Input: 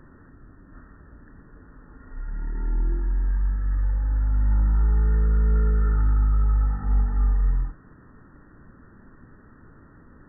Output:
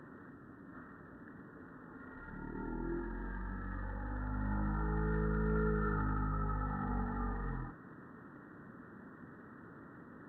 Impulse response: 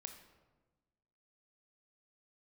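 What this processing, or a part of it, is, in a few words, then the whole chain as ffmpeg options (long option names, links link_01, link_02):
Bluetooth headset: -filter_complex "[0:a]asettb=1/sr,asplit=3[link_01][link_02][link_03];[link_01]atrim=end=2.354[link_04];[link_02]atrim=start=2.35:end=2.84,asetpts=PTS-STARTPTS,afade=type=in:duration=0.004:curve=qsin,afade=type=out:start_time=0.486:duration=0.004:curve=qsin,lowpass=1600[link_05];[link_03]atrim=start=2.836[link_06];[link_04][link_05]acrossfade=duration=0.004:curve1=hsin:curve2=qsin[link_07];[link_07][link_06]acrossfade=duration=0.004:curve1=qsin:curve2=hsin,highpass=160,aresample=16000,aresample=44100" -ar 32000 -c:a sbc -b:a 64k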